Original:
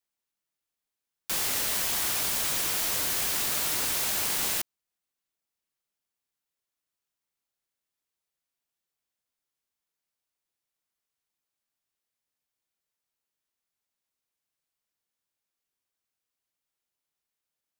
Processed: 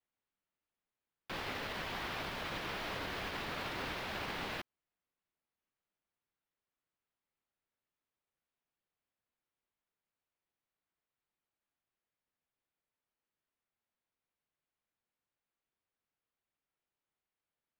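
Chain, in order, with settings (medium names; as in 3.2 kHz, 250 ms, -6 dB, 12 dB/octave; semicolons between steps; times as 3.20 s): peak limiter -21.5 dBFS, peak gain reduction 6.5 dB; distance through air 360 m; trim +1.5 dB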